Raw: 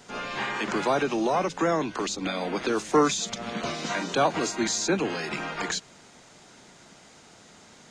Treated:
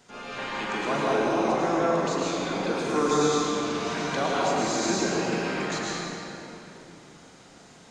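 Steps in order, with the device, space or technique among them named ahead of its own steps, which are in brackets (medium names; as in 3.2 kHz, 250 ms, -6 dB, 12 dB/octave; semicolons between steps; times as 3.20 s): tunnel (flutter echo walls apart 7.1 m, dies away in 0.25 s; reverberation RT60 3.4 s, pre-delay 102 ms, DRR -6 dB); trim -7 dB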